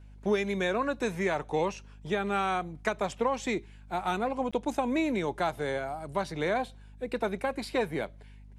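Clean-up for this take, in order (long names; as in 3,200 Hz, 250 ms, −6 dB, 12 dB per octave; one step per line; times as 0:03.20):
hum removal 50.6 Hz, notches 5
repair the gap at 0:04.51, 16 ms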